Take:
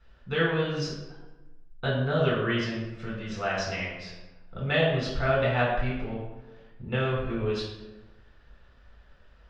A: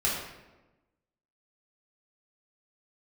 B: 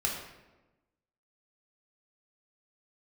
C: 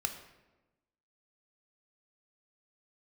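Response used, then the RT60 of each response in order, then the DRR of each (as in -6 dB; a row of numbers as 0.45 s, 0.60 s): A; 1.1 s, 1.1 s, 1.1 s; -6.0 dB, -2.0 dB, 5.0 dB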